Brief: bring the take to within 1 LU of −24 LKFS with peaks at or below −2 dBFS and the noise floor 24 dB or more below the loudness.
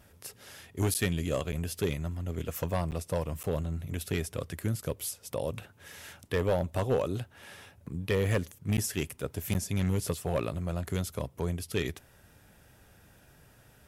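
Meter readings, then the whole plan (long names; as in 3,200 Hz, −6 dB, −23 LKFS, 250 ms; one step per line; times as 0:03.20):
share of clipped samples 0.4%; peaks flattened at −20.5 dBFS; number of dropouts 6; longest dropout 9.2 ms; integrated loudness −32.5 LKFS; sample peak −20.5 dBFS; target loudness −24.0 LKFS
→ clipped peaks rebuilt −20.5 dBFS
repair the gap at 0:00.94/0:01.52/0:02.91/0:03.43/0:08.77/0:09.54, 9.2 ms
level +8.5 dB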